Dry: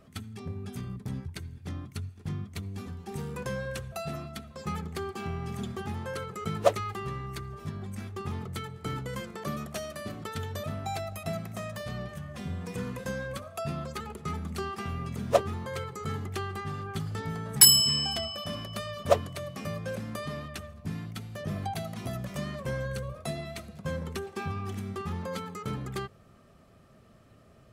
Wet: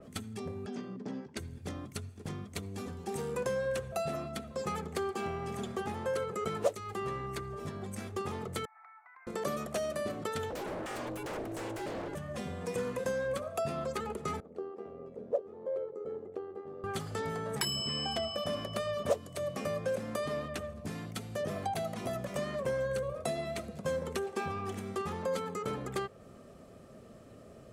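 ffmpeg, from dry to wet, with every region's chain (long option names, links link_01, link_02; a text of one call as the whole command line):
ffmpeg -i in.wav -filter_complex "[0:a]asettb=1/sr,asplit=3[link_01][link_02][link_03];[link_01]atrim=end=0.664[link_04];[link_02]atrim=start=0.66:end=1.37,asetpts=PTS-STARTPTS,afade=type=in:duration=0.004:curve=qsin,afade=type=out:start_time=0.706:duration=0.004:curve=qsin,acompressor=mode=upward:threshold=-38dB:ratio=2.5:attack=3.2:release=140:knee=2.83:detection=peak,highpass=frequency=180:width=0.5412,highpass=frequency=180:width=1.3066,equalizer=frequency=260:width_type=q:width=4:gain=4,equalizer=frequency=1200:width_type=q:width=4:gain=-3,equalizer=frequency=2300:width_type=q:width=4:gain=-5,equalizer=frequency=3800:width_type=q:width=4:gain=-8,lowpass=frequency=5200:width=0.5412,lowpass=frequency=5200:width=1.3066[link_05];[link_03]atrim=start=1.366[link_06];[link_04][link_05]acrossfade=duration=0.004:curve1=hsin:curve2=qsin[link_07];[link_07][link_06]acrossfade=duration=0.004:curve1=qsin:curve2=hsin,asettb=1/sr,asplit=3[link_08][link_09][link_10];[link_08]atrim=end=8.654[link_11];[link_09]atrim=start=8.65:end=9.27,asetpts=PTS-STARTPTS,afade=type=in:duration=0.004:curve=qsin,afade=type=out:start_time=0.616:duration=0.004:curve=qsin,asuperpass=centerf=1300:order=20:qfactor=0.8,acompressor=threshold=-54dB:ratio=10:attack=3.2:release=140:knee=1:detection=peak[link_12];[link_10]atrim=start=9.266[link_13];[link_11][link_12]acrossfade=duration=0.004:curve1=hsin:curve2=qsin[link_14];[link_14][link_13]acrossfade=duration=0.004:curve1=qsin:curve2=hsin,asettb=1/sr,asplit=3[link_15][link_16][link_17];[link_15]atrim=end=10.504[link_18];[link_16]atrim=start=10.5:end=12.15,asetpts=PTS-STARTPTS,afade=type=in:duration=0.004:curve=qsin,afade=type=out:start_time=1.646:duration=0.004:curve=qsin,lowshelf=frequency=160:gain=9.5,aeval=exprs='0.02*(abs(mod(val(0)/0.02+3,4)-2)-1)':channel_layout=same,aeval=exprs='val(0)*sin(2*PI*220*n/s)':channel_layout=same[link_19];[link_17]atrim=start=12.146[link_20];[link_18][link_19]acrossfade=duration=0.004:curve1=hsin:curve2=qsin[link_21];[link_21][link_20]acrossfade=duration=0.004:curve1=qsin:curve2=hsin,asettb=1/sr,asplit=3[link_22][link_23][link_24];[link_22]atrim=end=14.404[link_25];[link_23]atrim=start=14.4:end=16.84,asetpts=PTS-STARTPTS,afade=type=in:duration=0.004:curve=qsin,afade=type=out:start_time=2.436:duration=0.004:curve=qsin,bandpass=frequency=490:width_type=q:width=3.4,tremolo=f=86:d=0.519[link_26];[link_24]atrim=start=16.836[link_27];[link_25][link_26]acrossfade=duration=0.004:curve1=hsin:curve2=qsin[link_28];[link_28][link_27]acrossfade=duration=0.004:curve1=qsin:curve2=hsin,equalizer=frequency=250:width_type=o:width=1:gain=5,equalizer=frequency=500:width_type=o:width=1:gain=9,equalizer=frequency=8000:width_type=o:width=1:gain=6,acrossover=split=490|4200[link_29][link_30][link_31];[link_29]acompressor=threshold=-40dB:ratio=4[link_32];[link_30]acompressor=threshold=-32dB:ratio=4[link_33];[link_31]acompressor=threshold=-40dB:ratio=4[link_34];[link_32][link_33][link_34]amix=inputs=3:normalize=0,adynamicequalizer=threshold=0.00251:dfrequency=3300:dqfactor=0.7:tfrequency=3300:tqfactor=0.7:attack=5:release=100:ratio=0.375:range=3:mode=cutabove:tftype=highshelf" out.wav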